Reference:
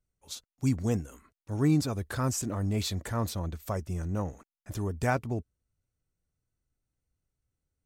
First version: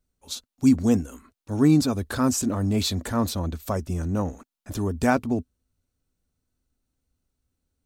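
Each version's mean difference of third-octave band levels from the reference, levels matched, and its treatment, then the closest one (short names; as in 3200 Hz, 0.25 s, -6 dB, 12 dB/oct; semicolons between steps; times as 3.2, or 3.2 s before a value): 1.5 dB: thirty-one-band EQ 125 Hz -9 dB, 250 Hz +8 dB, 2000 Hz -4 dB, 4000 Hz +3 dB; gain +6 dB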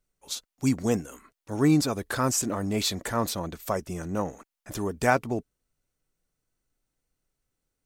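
3.5 dB: bell 80 Hz -15 dB 1.6 oct; gain +7 dB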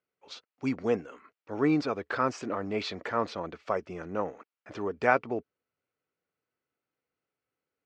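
8.0 dB: speaker cabinet 340–4100 Hz, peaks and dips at 460 Hz +4 dB, 1300 Hz +4 dB, 2300 Hz +3 dB, 3700 Hz -6 dB; gain +4.5 dB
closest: first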